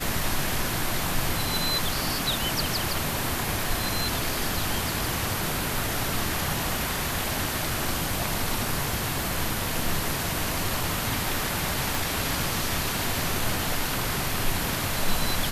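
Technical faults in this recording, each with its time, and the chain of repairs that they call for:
0:11.95: click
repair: click removal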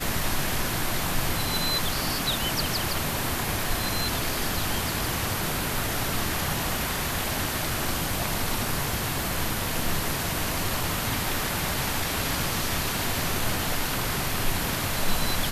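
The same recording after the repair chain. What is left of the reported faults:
0:11.95: click

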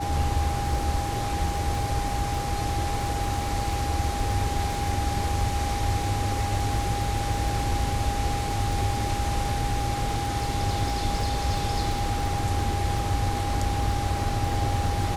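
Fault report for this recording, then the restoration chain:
surface crackle 45 per second −32 dBFS
whistle 810 Hz −30 dBFS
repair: click removal
notch filter 810 Hz, Q 30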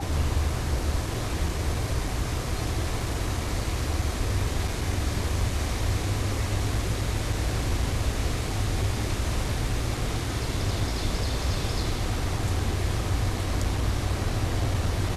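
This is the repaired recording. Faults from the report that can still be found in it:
none of them is left

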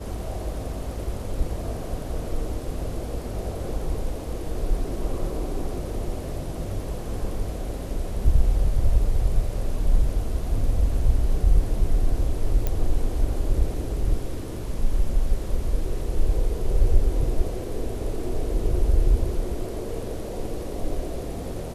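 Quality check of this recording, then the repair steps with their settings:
0:12.67: click −11 dBFS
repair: click removal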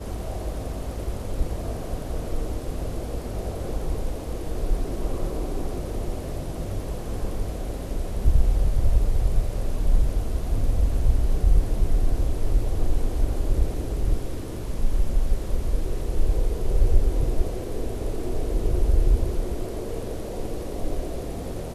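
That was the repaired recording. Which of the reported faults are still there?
none of them is left

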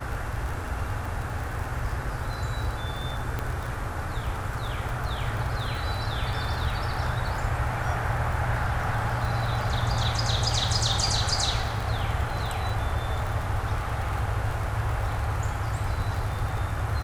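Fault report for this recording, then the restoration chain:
surface crackle 36 per second −31 dBFS
0:03.39: click −16 dBFS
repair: click removal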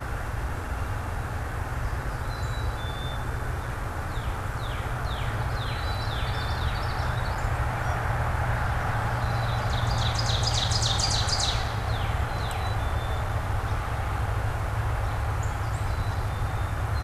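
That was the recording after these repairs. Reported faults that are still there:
none of them is left

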